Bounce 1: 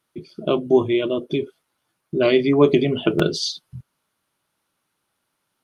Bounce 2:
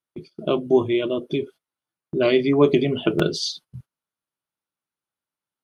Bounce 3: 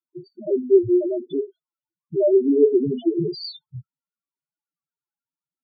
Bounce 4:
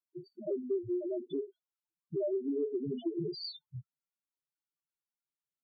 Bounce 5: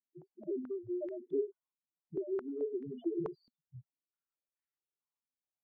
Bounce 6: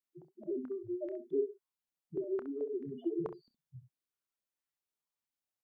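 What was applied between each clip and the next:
noise gate −40 dBFS, range −16 dB; level −1.5 dB
spectral peaks only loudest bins 2; level +4.5 dB
downward compressor 6 to 1, threshold −23 dBFS, peak gain reduction 13 dB; level −8 dB
low-pass on a step sequencer 4.6 Hz 240–1,900 Hz; level −7.5 dB
ambience of single reflections 29 ms −14.5 dB, 66 ms −11.5 dB

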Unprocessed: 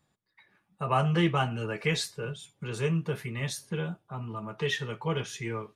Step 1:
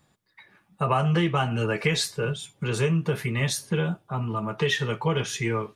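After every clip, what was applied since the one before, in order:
downward compressor 6 to 1, threshold −28 dBFS, peak gain reduction 8.5 dB
level +8.5 dB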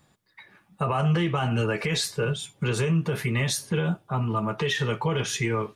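brickwall limiter −19 dBFS, peak gain reduction 9.5 dB
level +2.5 dB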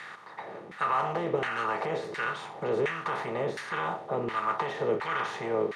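compressor on every frequency bin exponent 0.4
auto-filter band-pass saw down 1.4 Hz 390–1,900 Hz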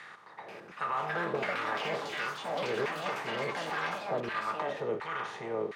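delay with pitch and tempo change per echo 485 ms, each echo +5 semitones, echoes 3
level −5.5 dB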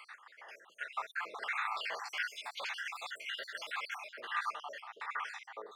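time-frequency cells dropped at random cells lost 58%
high-pass filter 1,200 Hz 12 dB per octave
level +2 dB

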